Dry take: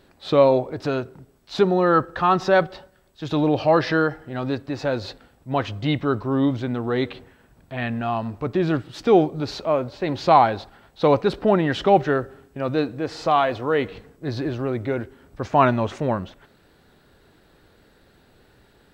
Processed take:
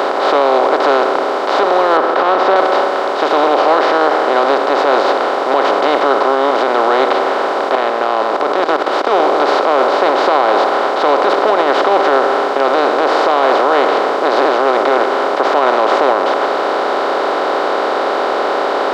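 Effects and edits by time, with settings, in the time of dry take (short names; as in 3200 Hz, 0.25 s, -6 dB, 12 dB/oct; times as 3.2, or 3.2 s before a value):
1.97–2.56 air absorption 410 m
7.75–9.2 level quantiser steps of 22 dB
whole clip: per-bin compression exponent 0.2; HPF 330 Hz 24 dB/oct; maximiser +1 dB; gain -1 dB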